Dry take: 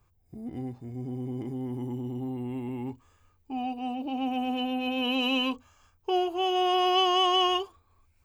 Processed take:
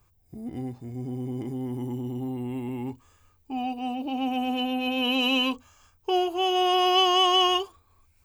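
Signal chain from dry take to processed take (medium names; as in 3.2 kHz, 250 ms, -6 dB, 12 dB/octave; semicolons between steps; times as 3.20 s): treble shelf 4.3 kHz +6.5 dB; trim +2 dB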